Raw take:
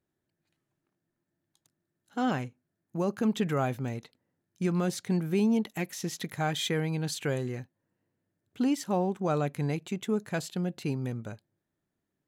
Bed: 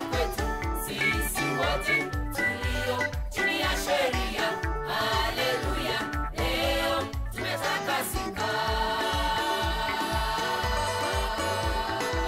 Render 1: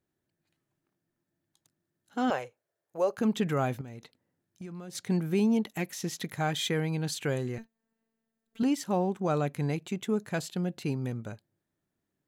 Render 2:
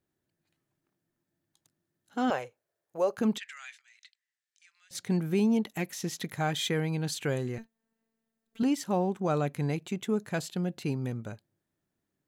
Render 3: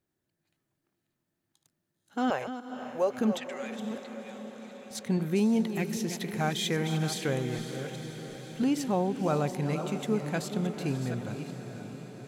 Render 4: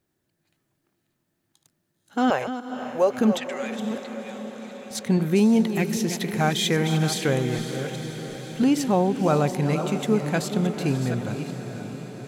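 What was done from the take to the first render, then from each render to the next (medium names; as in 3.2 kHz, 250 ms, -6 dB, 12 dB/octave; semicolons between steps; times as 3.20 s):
2.30–3.18 s: resonant low shelf 350 Hz -12.5 dB, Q 3; 3.81–4.95 s: compression 5:1, threshold -40 dBFS; 7.58–8.63 s: robot voice 225 Hz
3.38–4.91 s: elliptic band-pass 1.8–8.3 kHz, stop band 70 dB
chunks repeated in reverse 398 ms, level -10 dB; echo that smears into a reverb 531 ms, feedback 66%, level -10.5 dB
trim +7 dB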